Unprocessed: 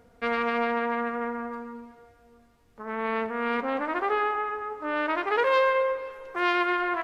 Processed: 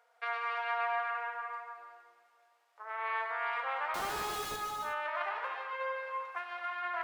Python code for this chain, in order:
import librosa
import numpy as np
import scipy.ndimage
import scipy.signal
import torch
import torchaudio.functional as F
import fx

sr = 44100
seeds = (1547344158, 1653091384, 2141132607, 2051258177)

y = fx.octave_divider(x, sr, octaves=1, level_db=4.0, at=(1.76, 3.16))
y = scipy.signal.sosfilt(scipy.signal.cheby2(4, 70, 160.0, 'highpass', fs=sr, output='sos'), y)
y = fx.high_shelf(y, sr, hz=4100.0, db=-6.0)
y = fx.over_compress(y, sr, threshold_db=-31.0, ratio=-0.5)
y = fx.schmitt(y, sr, flips_db=-43.5, at=(3.94, 4.56))
y = fx.echo_feedback(y, sr, ms=135, feedback_pct=28, wet_db=-17.5)
y = fx.rev_gated(y, sr, seeds[0], gate_ms=400, shape='flat', drr_db=1.5)
y = y * librosa.db_to_amplitude(-6.0)